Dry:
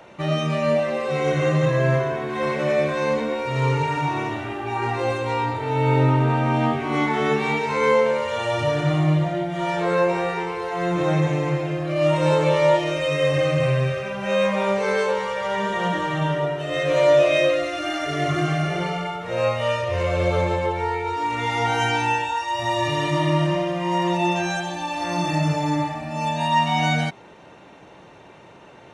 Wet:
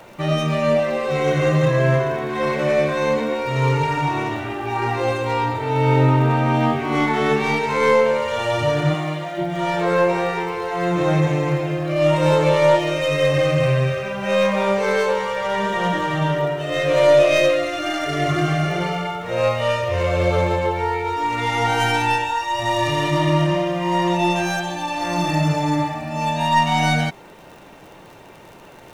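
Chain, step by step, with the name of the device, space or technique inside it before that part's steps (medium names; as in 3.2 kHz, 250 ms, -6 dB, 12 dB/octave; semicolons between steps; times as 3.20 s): record under a worn stylus (tracing distortion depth 0.049 ms; crackle 49 per s -38 dBFS; pink noise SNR 37 dB); 8.93–9.37 s: high-pass 390 Hz -> 1 kHz 6 dB/octave; trim +2.5 dB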